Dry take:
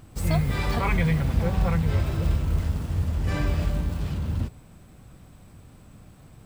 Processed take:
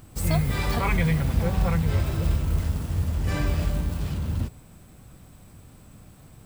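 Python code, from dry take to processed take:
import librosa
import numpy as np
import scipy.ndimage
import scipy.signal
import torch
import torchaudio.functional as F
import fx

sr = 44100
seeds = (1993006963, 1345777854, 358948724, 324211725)

y = fx.high_shelf(x, sr, hz=7500.0, db=8.0)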